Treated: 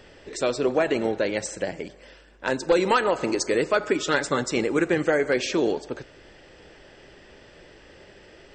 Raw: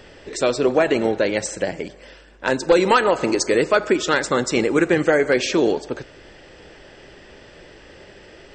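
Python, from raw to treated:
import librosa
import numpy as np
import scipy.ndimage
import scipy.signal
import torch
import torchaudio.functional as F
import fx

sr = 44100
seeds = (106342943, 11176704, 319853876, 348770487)

y = fx.comb(x, sr, ms=7.0, depth=0.48, at=(3.8, 4.43))
y = y * 10.0 ** (-5.0 / 20.0)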